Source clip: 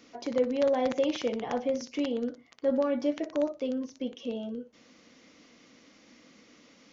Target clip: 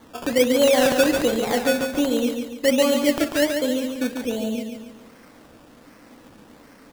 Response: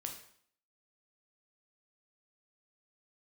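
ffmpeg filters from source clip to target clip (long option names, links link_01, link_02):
-af "acrusher=samples=17:mix=1:aa=0.000001:lfo=1:lforange=10.2:lforate=1.3,aecho=1:1:142|284|426|568|710:0.501|0.221|0.097|0.0427|0.0188,volume=8dB"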